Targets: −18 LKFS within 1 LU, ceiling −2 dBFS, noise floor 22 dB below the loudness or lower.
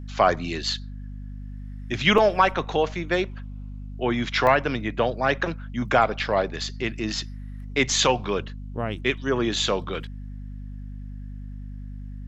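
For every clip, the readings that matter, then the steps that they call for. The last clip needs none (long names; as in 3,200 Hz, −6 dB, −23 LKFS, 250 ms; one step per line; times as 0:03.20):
number of dropouts 2; longest dropout 3.1 ms; mains hum 50 Hz; hum harmonics up to 250 Hz; level of the hum −33 dBFS; integrated loudness −24.0 LKFS; sample peak −4.5 dBFS; target loudness −18.0 LKFS
→ repair the gap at 0:02.18/0:04.47, 3.1 ms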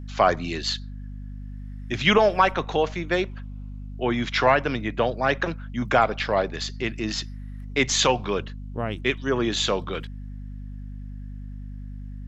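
number of dropouts 0; mains hum 50 Hz; hum harmonics up to 250 Hz; level of the hum −33 dBFS
→ hum removal 50 Hz, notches 5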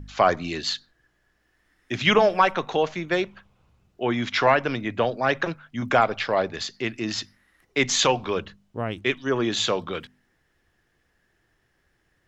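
mains hum none found; integrated loudness −24.0 LKFS; sample peak −4.5 dBFS; target loudness −18.0 LKFS
→ level +6 dB
brickwall limiter −2 dBFS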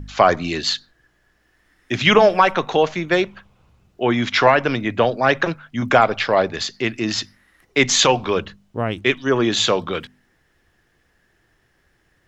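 integrated loudness −18.5 LKFS; sample peak −2.0 dBFS; background noise floor −63 dBFS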